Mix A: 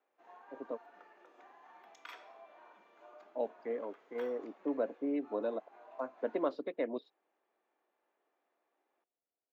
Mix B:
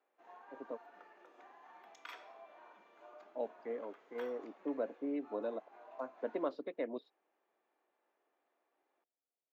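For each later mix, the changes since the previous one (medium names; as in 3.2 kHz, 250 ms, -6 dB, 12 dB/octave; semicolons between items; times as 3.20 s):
speech -3.5 dB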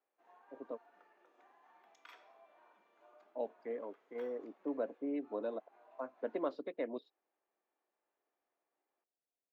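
background -7.5 dB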